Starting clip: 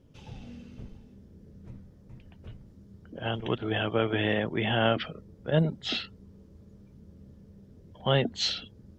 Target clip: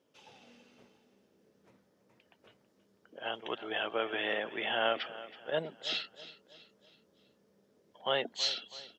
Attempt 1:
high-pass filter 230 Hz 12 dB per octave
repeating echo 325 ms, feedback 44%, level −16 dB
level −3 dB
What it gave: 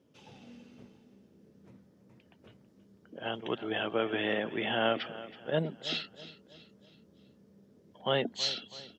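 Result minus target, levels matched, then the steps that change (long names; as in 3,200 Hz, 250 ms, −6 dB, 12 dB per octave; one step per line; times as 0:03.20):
250 Hz band +7.5 dB
change: high-pass filter 510 Hz 12 dB per octave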